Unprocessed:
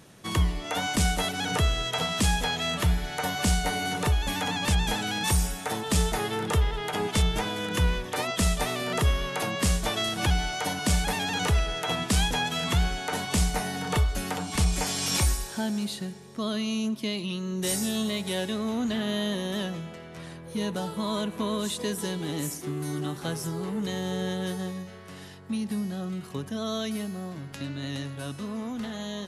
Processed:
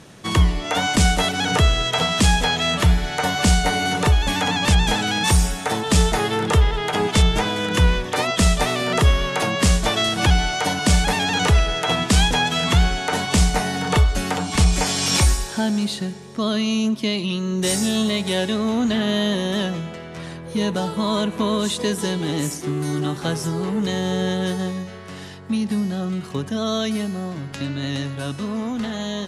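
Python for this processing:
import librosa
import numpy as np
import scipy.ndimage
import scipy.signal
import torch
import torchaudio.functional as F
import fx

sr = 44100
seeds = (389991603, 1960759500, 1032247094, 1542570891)

y = scipy.signal.sosfilt(scipy.signal.butter(2, 8900.0, 'lowpass', fs=sr, output='sos'), x)
y = F.gain(torch.from_numpy(y), 8.0).numpy()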